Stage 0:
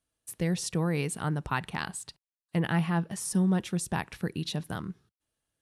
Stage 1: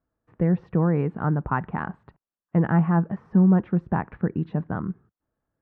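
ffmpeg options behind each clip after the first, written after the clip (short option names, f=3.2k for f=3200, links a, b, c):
-af "lowpass=f=1.5k:w=0.5412,lowpass=f=1.5k:w=1.3066,equalizer=f=220:t=o:w=0.77:g=3,volume=6dB"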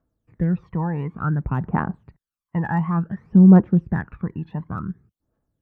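-af "aphaser=in_gain=1:out_gain=1:delay=1.2:decay=0.73:speed=0.56:type=triangular,volume=-3dB"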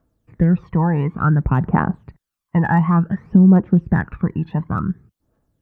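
-af "acompressor=threshold=-18dB:ratio=3,volume=7.5dB"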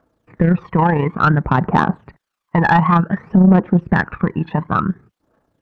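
-filter_complex "[0:a]tremolo=f=29:d=0.519,asplit=2[a][b];[b]highpass=f=720:p=1,volume=19dB,asoftclip=type=tanh:threshold=-3dB[c];[a][c]amix=inputs=2:normalize=0,lowpass=f=1.8k:p=1,volume=-6dB,volume=2dB"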